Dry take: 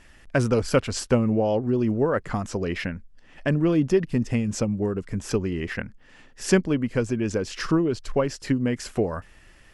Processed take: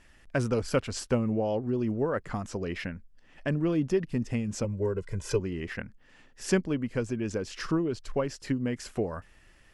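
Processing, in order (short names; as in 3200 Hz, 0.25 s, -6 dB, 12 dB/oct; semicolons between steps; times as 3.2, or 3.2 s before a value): 4.64–5.4 comb 2 ms, depth 97%; gain -6 dB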